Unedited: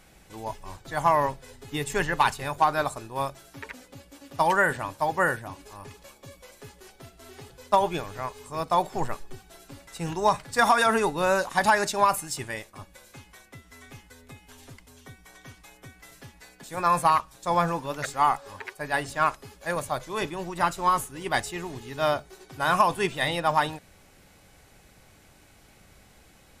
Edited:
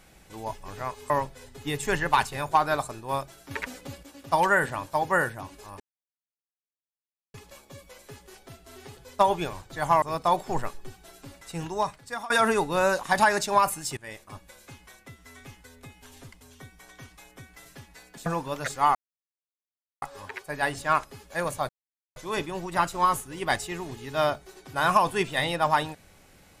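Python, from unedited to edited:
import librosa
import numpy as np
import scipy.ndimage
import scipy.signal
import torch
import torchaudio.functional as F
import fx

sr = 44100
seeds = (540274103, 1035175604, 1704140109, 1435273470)

y = fx.edit(x, sr, fx.swap(start_s=0.68, length_s=0.49, other_s=8.06, other_length_s=0.42),
    fx.clip_gain(start_s=3.58, length_s=0.52, db=6.5),
    fx.insert_silence(at_s=5.87, length_s=1.54),
    fx.fade_out_to(start_s=9.83, length_s=0.93, floor_db=-22.0),
    fx.fade_in_from(start_s=12.43, length_s=0.26, floor_db=-22.0),
    fx.cut(start_s=16.72, length_s=0.92),
    fx.insert_silence(at_s=18.33, length_s=1.07),
    fx.insert_silence(at_s=20.0, length_s=0.47), tone=tone)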